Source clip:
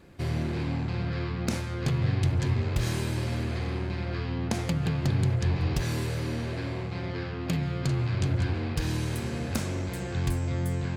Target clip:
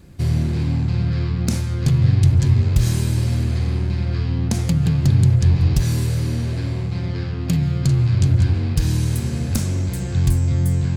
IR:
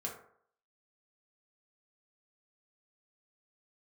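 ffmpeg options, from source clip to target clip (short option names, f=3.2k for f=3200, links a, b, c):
-af "bass=f=250:g=12,treble=f=4k:g=10"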